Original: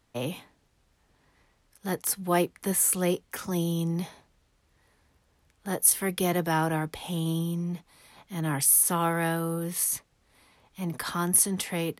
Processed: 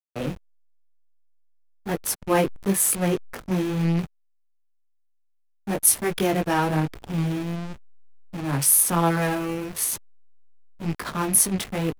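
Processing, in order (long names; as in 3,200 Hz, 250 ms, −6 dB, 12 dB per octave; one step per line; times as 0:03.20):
loose part that buzzes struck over −35 dBFS, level −29 dBFS
chorus effect 1 Hz, delay 18 ms, depth 3.6 ms
slack as between gear wheels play −29.5 dBFS
level +8 dB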